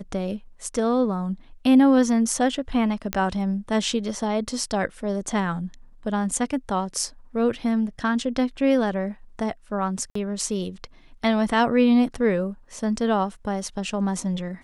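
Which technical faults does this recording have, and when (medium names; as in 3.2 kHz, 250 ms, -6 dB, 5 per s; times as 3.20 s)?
3.13 s: pop -8 dBFS
10.10–10.15 s: dropout 54 ms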